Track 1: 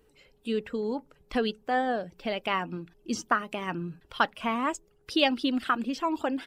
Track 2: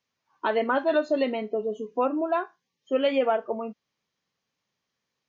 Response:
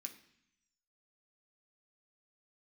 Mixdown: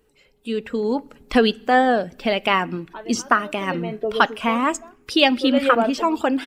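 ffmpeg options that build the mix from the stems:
-filter_complex "[0:a]volume=0.5dB,asplit=2[a][b];[b]volume=-9dB[c];[1:a]aeval=exprs='val(0)*pow(10,-23*(0.5-0.5*cos(2*PI*0.62*n/s))/20)':c=same,adelay=2500,volume=-3dB[d];[2:a]atrim=start_sample=2205[e];[c][e]afir=irnorm=-1:irlink=0[f];[a][d][f]amix=inputs=3:normalize=0,dynaudnorm=f=220:g=7:m=10.5dB"

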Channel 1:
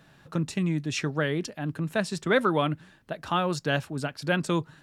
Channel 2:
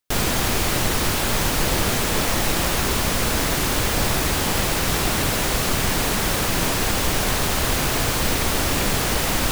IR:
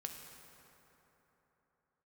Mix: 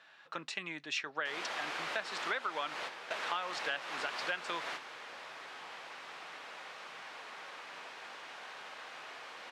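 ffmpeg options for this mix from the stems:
-filter_complex "[0:a]highshelf=f=2.2k:g=9.5,volume=-1.5dB,asplit=2[a][b];[1:a]adelay=1150,volume=-12.5dB,asplit=2[c][d];[d]volume=-7.5dB[e];[b]apad=whole_len=470468[f];[c][f]sidechaingate=range=-18dB:threshold=-44dB:ratio=16:detection=peak[g];[2:a]atrim=start_sample=2205[h];[e][h]afir=irnorm=-1:irlink=0[i];[a][g][i]amix=inputs=3:normalize=0,highpass=780,lowpass=3k,acompressor=threshold=-33dB:ratio=6"

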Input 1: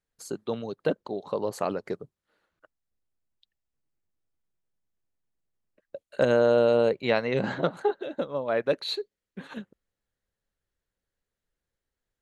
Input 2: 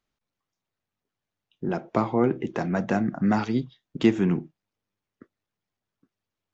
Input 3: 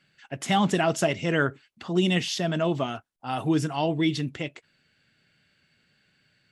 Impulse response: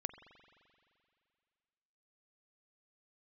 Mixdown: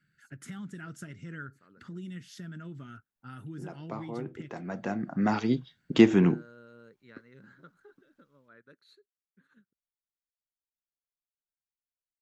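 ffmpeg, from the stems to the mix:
-filter_complex "[0:a]bass=f=250:g=-6,treble=f=4k:g=11,volume=-15dB[a];[1:a]adelay=1950,volume=2.5dB[b];[2:a]aemphasis=mode=production:type=50fm,bandreject=f=1.1k:w=10,volume=1dB,asplit=2[c][d];[d]apad=whole_len=373968[e];[b][e]sidechaincompress=threshold=-37dB:ratio=6:attack=9.6:release=1140[f];[a][c]amix=inputs=2:normalize=0,firequalizer=gain_entry='entry(120,0);entry(710,-29);entry(1400,-4);entry(2600,-21)':delay=0.05:min_phase=1,acompressor=threshold=-41dB:ratio=3,volume=0dB[g];[f][g]amix=inputs=2:normalize=0,lowshelf=f=110:g=-6.5"

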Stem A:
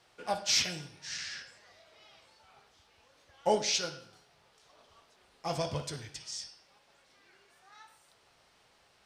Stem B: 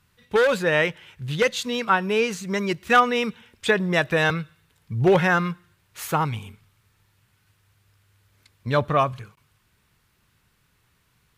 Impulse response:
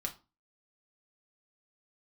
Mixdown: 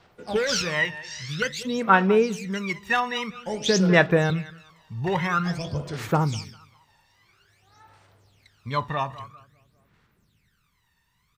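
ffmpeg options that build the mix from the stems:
-filter_complex "[0:a]volume=-2dB[a];[1:a]lowshelf=f=90:g=-9.5,volume=-8.5dB,asplit=3[b][c][d];[c]volume=-7dB[e];[d]volume=-14.5dB[f];[2:a]atrim=start_sample=2205[g];[e][g]afir=irnorm=-1:irlink=0[h];[f]aecho=0:1:199|398|597|796:1|0.31|0.0961|0.0298[i];[a][b][h][i]amix=inputs=4:normalize=0,equalizer=f=11k:t=o:w=0.6:g=-7.5,aphaser=in_gain=1:out_gain=1:delay=1.1:decay=0.73:speed=0.5:type=sinusoidal"

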